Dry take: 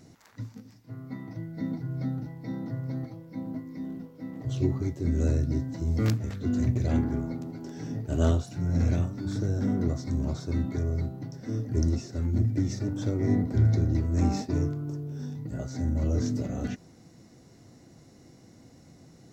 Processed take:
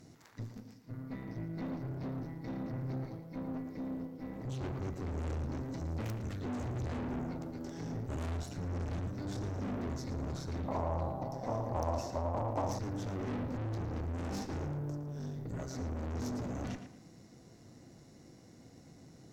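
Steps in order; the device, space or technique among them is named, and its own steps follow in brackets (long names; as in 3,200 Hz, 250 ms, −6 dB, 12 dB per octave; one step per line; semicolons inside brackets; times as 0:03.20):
rockabilly slapback (tube saturation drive 37 dB, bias 0.75; tape delay 113 ms, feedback 33%, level −7 dB, low-pass 3,500 Hz)
0:10.68–0:12.79: flat-topped bell 770 Hz +14.5 dB 1.3 octaves
level +1 dB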